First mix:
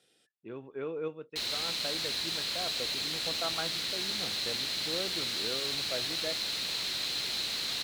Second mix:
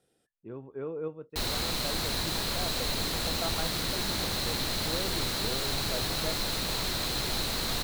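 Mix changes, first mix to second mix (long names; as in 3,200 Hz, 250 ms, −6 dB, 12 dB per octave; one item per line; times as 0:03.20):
background +10.5 dB
master: remove meter weighting curve D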